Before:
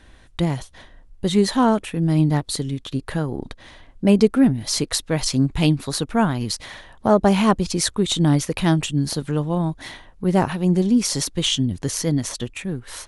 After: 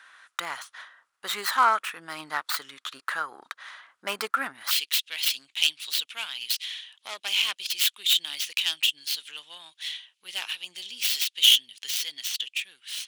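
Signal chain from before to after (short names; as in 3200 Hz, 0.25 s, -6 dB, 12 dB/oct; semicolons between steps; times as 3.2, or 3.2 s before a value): tracing distortion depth 0.47 ms; resonant high-pass 1300 Hz, resonance Q 3.8, from 4.71 s 3000 Hz; gain -1.5 dB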